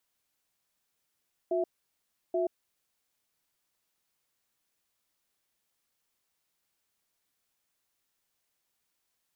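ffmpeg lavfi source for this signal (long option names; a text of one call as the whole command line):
ffmpeg -f lavfi -i "aevalsrc='0.0376*(sin(2*PI*360*t)+sin(2*PI*661*t))*clip(min(mod(t,0.83),0.13-mod(t,0.83))/0.005,0,1)':duration=1.66:sample_rate=44100" out.wav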